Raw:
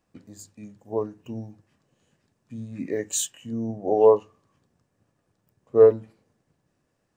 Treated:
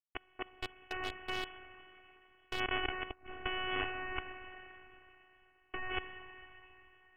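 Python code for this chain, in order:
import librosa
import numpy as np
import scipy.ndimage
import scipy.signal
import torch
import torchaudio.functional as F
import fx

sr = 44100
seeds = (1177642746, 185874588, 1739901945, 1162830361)

y = fx.schmitt(x, sr, flips_db=-34.5)
y = scipy.signal.sosfilt(scipy.signal.butter(2, 110.0, 'highpass', fs=sr, output='sos'), y)
y = np.diff(y, prepend=0.0)
y = fx.rev_plate(y, sr, seeds[0], rt60_s=3.4, hf_ratio=0.95, predelay_ms=0, drr_db=17.0)
y = fx.over_compress(y, sr, threshold_db=-44.0, ratio=-1.0)
y = fx.freq_invert(y, sr, carrier_hz=3200)
y = fx.low_shelf(y, sr, hz=450.0, db=5.0)
y = fx.clip_hard(y, sr, threshold_db=-40.0, at=(0.49, 2.6))
y = fx.robotise(y, sr, hz=371.0)
y = F.gain(torch.from_numpy(y), 14.5).numpy()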